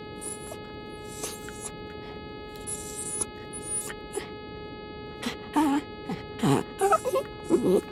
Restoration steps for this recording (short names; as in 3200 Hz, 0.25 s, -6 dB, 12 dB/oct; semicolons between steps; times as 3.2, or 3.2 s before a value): de-click; de-hum 422 Hz, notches 11; interpolate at 0.47, 2 ms; noise print and reduce 30 dB